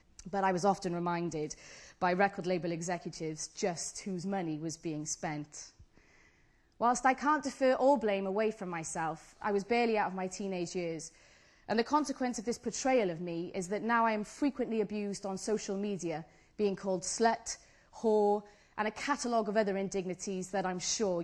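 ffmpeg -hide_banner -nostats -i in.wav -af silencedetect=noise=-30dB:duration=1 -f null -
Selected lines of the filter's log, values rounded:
silence_start: 5.36
silence_end: 6.81 | silence_duration: 1.45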